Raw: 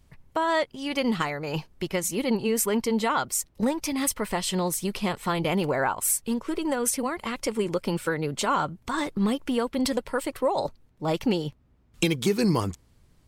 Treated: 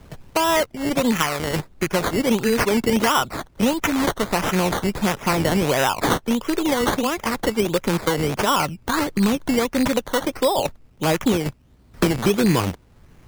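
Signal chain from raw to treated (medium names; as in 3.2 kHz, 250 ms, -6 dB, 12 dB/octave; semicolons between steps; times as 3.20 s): rattle on loud lows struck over -34 dBFS, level -23 dBFS; 2.77–3.94 s: resonant low-pass 2.2 kHz -> 7.5 kHz, resonance Q 2.7; decimation with a swept rate 14×, swing 60% 1.5 Hz; 1.16–1.59 s: tilt shelf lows -3 dB; three bands compressed up and down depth 40%; trim +5.5 dB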